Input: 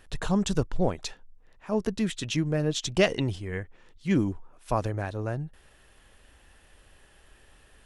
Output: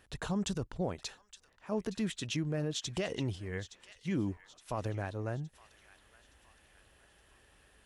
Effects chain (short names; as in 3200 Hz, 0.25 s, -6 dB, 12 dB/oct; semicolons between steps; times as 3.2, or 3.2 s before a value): HPF 46 Hz; limiter -19.5 dBFS, peak gain reduction 10.5 dB; on a send: thin delay 0.867 s, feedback 46%, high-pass 1500 Hz, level -14 dB; on the sum: gain -5.5 dB